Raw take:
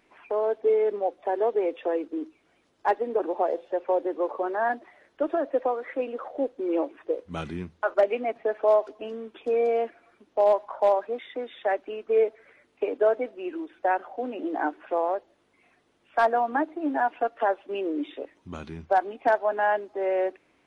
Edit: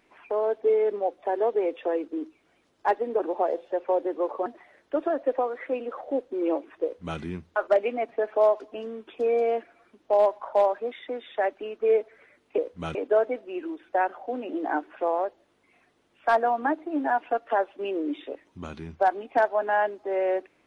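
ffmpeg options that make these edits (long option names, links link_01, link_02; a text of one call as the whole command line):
ffmpeg -i in.wav -filter_complex "[0:a]asplit=4[link_01][link_02][link_03][link_04];[link_01]atrim=end=4.462[link_05];[link_02]atrim=start=4.728:end=12.852[link_06];[link_03]atrim=start=7.098:end=7.472[link_07];[link_04]atrim=start=12.848[link_08];[link_05][link_06]acrossfade=duration=0.004:curve1=hsin:curve2=hsin[link_09];[link_09][link_07]acrossfade=duration=0.004:curve1=hsin:curve2=hsin[link_10];[link_10][link_08]acrossfade=duration=0.004:curve1=hsin:curve2=hsin" out.wav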